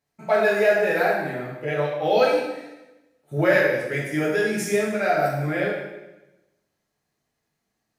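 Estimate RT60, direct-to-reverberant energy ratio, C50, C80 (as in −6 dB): 1.0 s, −6.0 dB, 1.5 dB, 4.0 dB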